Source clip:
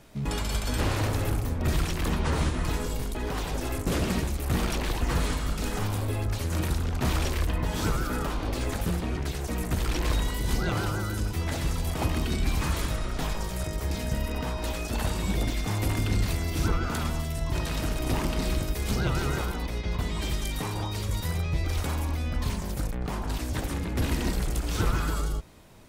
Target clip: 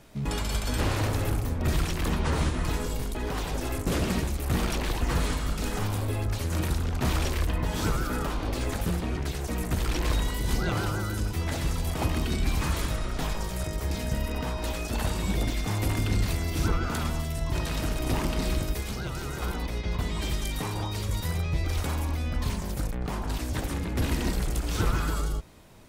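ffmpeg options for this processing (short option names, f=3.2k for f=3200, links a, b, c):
-filter_complex "[0:a]asettb=1/sr,asplit=3[a][b][c];[a]atrim=end=18.804[d];[b]atrim=start=18.8:end=19.42,asetpts=PTS-STARTPTS,afade=t=in:d=0.004:c=qsin,afade=t=out:st=0.616:d=0.004:c=qsin,acrossover=split=640|5100[e][f][g];[e]acompressor=threshold=-32dB:ratio=4[h];[f]acompressor=threshold=-40dB:ratio=4[i];[g]acompressor=threshold=-44dB:ratio=4[j];[h][i][j]amix=inputs=3:normalize=0[k];[c]atrim=start=19.416[l];[d][k]acrossfade=d=0.004:c1=hsin:c2=qsin[m];[m][l]acrossfade=d=0.004:c1=qsin:c2=hsin"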